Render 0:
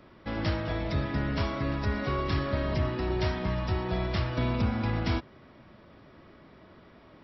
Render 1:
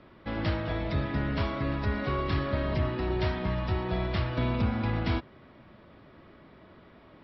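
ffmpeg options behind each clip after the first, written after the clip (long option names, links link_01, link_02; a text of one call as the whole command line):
ffmpeg -i in.wav -af "lowpass=frequency=4500:width=0.5412,lowpass=frequency=4500:width=1.3066" out.wav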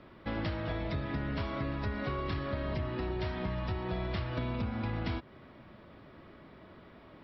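ffmpeg -i in.wav -af "acompressor=threshold=-31dB:ratio=6" out.wav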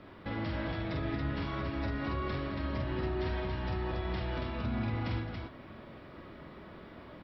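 ffmpeg -i in.wav -af "alimiter=level_in=6.5dB:limit=-24dB:level=0:latency=1:release=179,volume=-6.5dB,flanger=delay=9.8:depth=5.5:regen=-71:speed=0.57:shape=sinusoidal,aecho=1:1:46|215|280:0.668|0.211|0.631,volume=6dB" out.wav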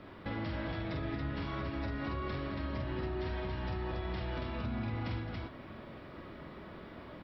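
ffmpeg -i in.wav -af "acompressor=threshold=-37dB:ratio=2,volume=1dB" out.wav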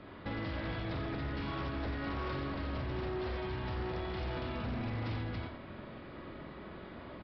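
ffmpeg -i in.wav -af "aecho=1:1:89:0.473,aresample=11025,aeval=exprs='0.0266*(abs(mod(val(0)/0.0266+3,4)-2)-1)':channel_layout=same,aresample=44100" out.wav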